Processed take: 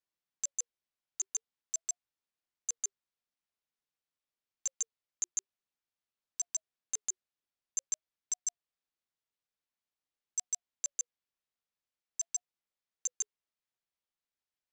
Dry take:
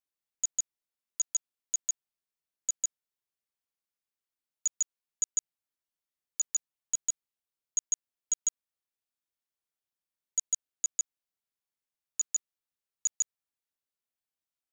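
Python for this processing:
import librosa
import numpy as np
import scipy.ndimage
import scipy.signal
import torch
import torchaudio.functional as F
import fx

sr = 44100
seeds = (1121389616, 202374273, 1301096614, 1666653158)

y = scipy.signal.sosfilt(scipy.signal.butter(2, 5900.0, 'lowpass', fs=sr, output='sos'), x)
y = fx.cheby_harmonics(y, sr, harmonics=(2,), levels_db=(-36,), full_scale_db=-20.5)
y = fx.ring_lfo(y, sr, carrier_hz=540.0, swing_pct=35, hz=0.48)
y = F.gain(torch.from_numpy(y), 2.5).numpy()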